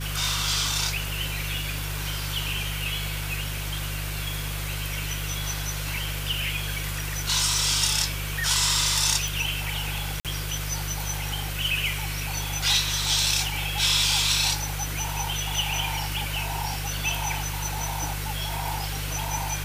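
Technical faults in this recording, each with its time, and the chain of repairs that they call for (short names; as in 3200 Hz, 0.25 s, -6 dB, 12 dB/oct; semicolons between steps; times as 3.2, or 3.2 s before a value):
hum 50 Hz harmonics 3 -32 dBFS
9.28 pop
10.2–10.25 gap 47 ms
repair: de-click; de-hum 50 Hz, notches 3; interpolate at 10.2, 47 ms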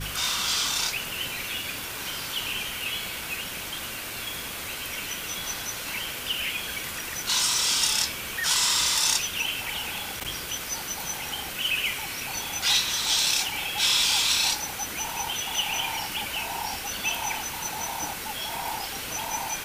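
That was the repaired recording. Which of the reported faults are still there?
none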